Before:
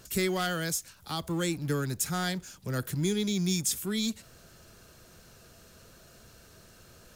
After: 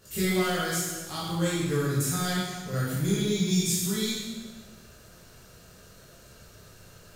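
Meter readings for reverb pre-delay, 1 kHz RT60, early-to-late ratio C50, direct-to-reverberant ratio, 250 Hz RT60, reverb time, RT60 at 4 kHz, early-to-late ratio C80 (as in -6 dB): 13 ms, 1.3 s, -1.5 dB, -9.5 dB, 1.4 s, 1.4 s, 1.2 s, 1.5 dB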